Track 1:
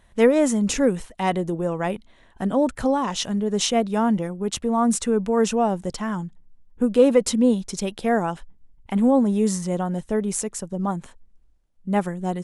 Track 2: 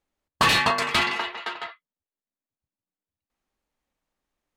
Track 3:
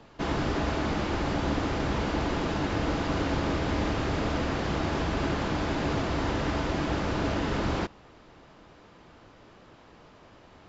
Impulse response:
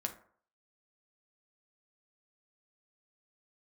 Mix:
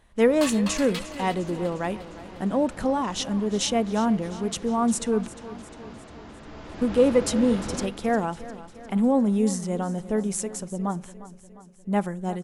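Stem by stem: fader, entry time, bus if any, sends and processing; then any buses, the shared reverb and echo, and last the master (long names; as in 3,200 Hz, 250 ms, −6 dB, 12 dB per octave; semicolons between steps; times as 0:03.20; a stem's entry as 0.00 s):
−4.5 dB, 0.00 s, muted 0:05.28–0:06.46, send −13.5 dB, echo send −15 dB, no processing
−16.5 dB, 0.00 s, send −7 dB, echo send −12.5 dB, spectral tilt +3.5 dB per octave; gate pattern "..x.xx.x" 91 BPM −12 dB; automatic ducking −11 dB, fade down 1.90 s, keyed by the first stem
0:06.43 −20.5 dB → 0:07.00 −10 dB, 0.00 s, send −4 dB, echo send −7 dB, no processing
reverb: on, RT60 0.55 s, pre-delay 5 ms
echo: repeating echo 353 ms, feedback 57%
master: no processing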